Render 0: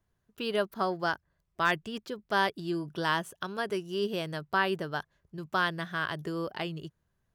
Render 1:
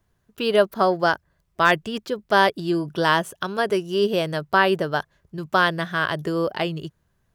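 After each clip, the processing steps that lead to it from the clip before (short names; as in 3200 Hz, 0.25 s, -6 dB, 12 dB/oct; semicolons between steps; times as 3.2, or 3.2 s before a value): dynamic EQ 560 Hz, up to +5 dB, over -42 dBFS, Q 1.8; gain +8.5 dB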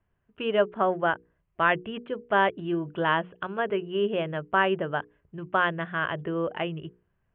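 steep low-pass 3100 Hz 72 dB/oct; notches 60/120/180/240/300/360/420/480 Hz; gain -5 dB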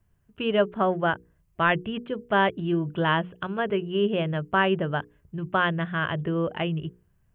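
tone controls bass +9 dB, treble +12 dB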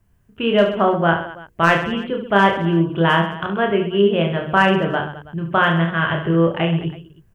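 hard clip -11.5 dBFS, distortion -32 dB; reverse bouncing-ball echo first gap 30 ms, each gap 1.4×, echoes 5; gain +5.5 dB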